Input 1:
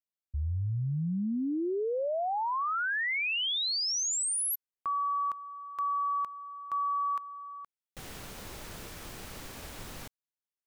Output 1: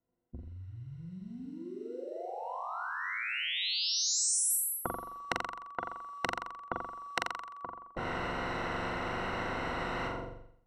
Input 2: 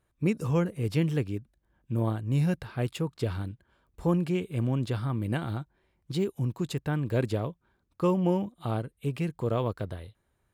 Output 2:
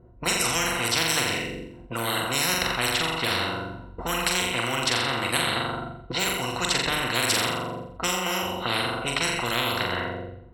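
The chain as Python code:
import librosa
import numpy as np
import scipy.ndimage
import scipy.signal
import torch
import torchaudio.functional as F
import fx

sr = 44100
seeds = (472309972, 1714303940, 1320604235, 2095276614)

y = fx.low_shelf(x, sr, hz=140.0, db=-5.5)
y = fx.env_lowpass(y, sr, base_hz=460.0, full_db=-25.5)
y = fx.ripple_eq(y, sr, per_octave=2.0, db=13)
y = fx.room_flutter(y, sr, wall_m=7.4, rt60_s=0.65)
y = fx.spectral_comp(y, sr, ratio=10.0)
y = F.gain(torch.from_numpy(y), 3.0).numpy()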